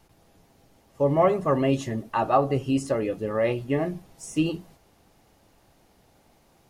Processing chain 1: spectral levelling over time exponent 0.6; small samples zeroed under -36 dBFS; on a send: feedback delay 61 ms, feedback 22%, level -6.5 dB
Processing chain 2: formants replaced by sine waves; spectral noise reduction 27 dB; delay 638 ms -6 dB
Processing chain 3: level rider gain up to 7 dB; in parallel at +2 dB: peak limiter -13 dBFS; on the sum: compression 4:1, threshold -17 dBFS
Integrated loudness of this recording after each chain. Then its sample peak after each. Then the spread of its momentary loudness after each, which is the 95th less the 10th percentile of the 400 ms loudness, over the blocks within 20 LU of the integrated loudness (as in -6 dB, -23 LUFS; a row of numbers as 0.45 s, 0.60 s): -22.0 LUFS, -24.5 LUFS, -21.0 LUFS; -5.5 dBFS, -8.0 dBFS, -7.0 dBFS; 8 LU, 8 LU, 5 LU